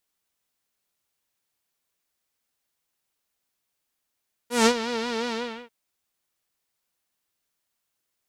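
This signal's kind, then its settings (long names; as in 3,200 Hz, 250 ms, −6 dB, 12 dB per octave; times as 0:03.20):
subtractive patch with vibrato A#4, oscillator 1 saw, sub −7.5 dB, noise −10.5 dB, filter lowpass, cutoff 2,700 Hz, Q 1.5, filter envelope 2 octaves, attack 160 ms, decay 0.07 s, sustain −13 dB, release 0.37 s, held 0.82 s, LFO 5.6 Hz, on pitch 85 cents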